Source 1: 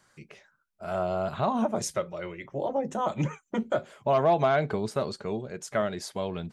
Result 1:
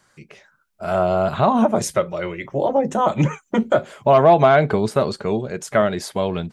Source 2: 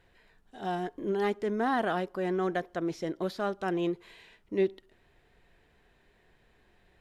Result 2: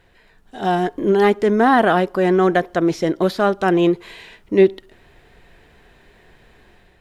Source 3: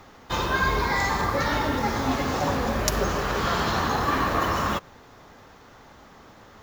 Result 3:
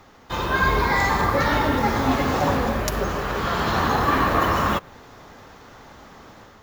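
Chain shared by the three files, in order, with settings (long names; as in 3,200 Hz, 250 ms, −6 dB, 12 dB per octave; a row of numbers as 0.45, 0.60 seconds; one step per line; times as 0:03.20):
dynamic equaliser 5,800 Hz, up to −5 dB, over −48 dBFS, Q 1.1
automatic gain control gain up to 6 dB
normalise the peak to −3 dBFS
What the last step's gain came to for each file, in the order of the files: +4.5, +8.5, −1.5 decibels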